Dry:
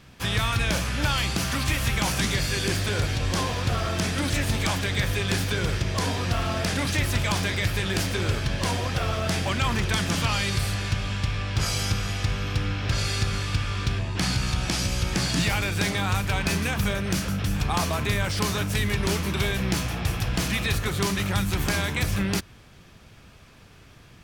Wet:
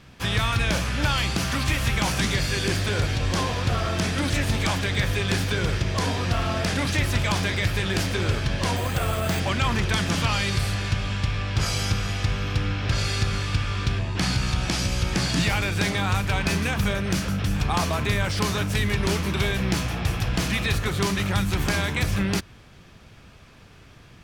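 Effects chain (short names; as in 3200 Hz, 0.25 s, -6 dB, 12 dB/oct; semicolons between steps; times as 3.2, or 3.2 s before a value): high shelf 8500 Hz -6.5 dB; 8.76–9.4 careless resampling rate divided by 4×, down filtered, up hold; gain +1.5 dB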